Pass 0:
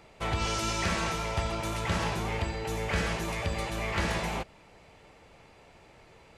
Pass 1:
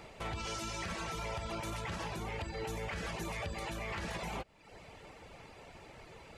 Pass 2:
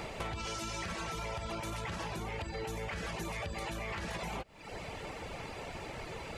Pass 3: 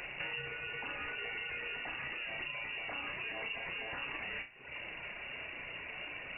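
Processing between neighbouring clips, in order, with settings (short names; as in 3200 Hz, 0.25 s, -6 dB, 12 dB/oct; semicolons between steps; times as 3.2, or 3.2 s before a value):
reverb removal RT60 0.6 s; compressor 6:1, threshold -38 dBFS, peak gain reduction 13 dB; limiter -34.5 dBFS, peak gain reduction 7.5 dB; gain +4 dB
compressor 6:1, threshold -47 dBFS, peak gain reduction 11 dB; gain +10.5 dB
on a send: flutter echo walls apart 5.6 m, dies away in 0.31 s; on the sum: inverted band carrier 2800 Hz; gain -3 dB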